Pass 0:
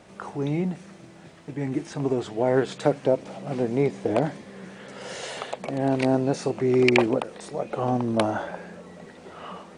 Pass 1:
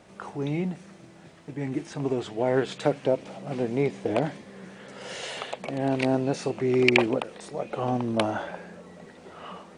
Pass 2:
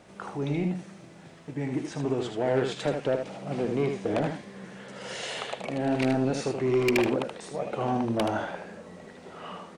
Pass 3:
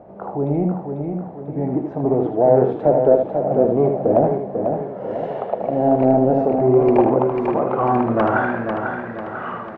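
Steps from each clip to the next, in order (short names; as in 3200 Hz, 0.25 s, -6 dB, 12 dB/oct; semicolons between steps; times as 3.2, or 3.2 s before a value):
dynamic EQ 2800 Hz, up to +5 dB, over -46 dBFS, Q 1.3; gain -2.5 dB
soft clip -18.5 dBFS, distortion -12 dB; on a send: echo 77 ms -6 dB
feedback echo 0.495 s, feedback 47%, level -6 dB; low-pass sweep 700 Hz -> 1500 Hz, 6.69–8.4; gain +7 dB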